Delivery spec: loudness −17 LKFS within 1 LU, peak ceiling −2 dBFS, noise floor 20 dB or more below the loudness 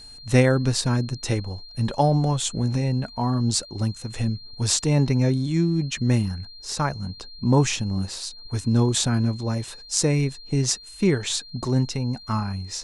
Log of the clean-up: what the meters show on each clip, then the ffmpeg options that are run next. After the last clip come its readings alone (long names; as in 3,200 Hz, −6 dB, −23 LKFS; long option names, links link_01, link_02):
interfering tone 4,200 Hz; level of the tone −42 dBFS; integrated loudness −23.5 LKFS; sample peak −3.0 dBFS; target loudness −17.0 LKFS
→ -af "bandreject=frequency=4200:width=30"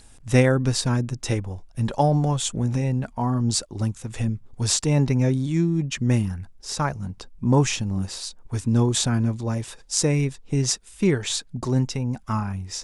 interfering tone none found; integrated loudness −23.5 LKFS; sample peak −3.5 dBFS; target loudness −17.0 LKFS
→ -af "volume=6.5dB,alimiter=limit=-2dB:level=0:latency=1"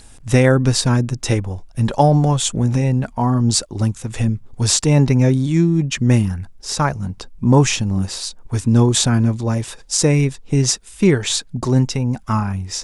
integrated loudness −17.5 LKFS; sample peak −2.0 dBFS; background noise floor −43 dBFS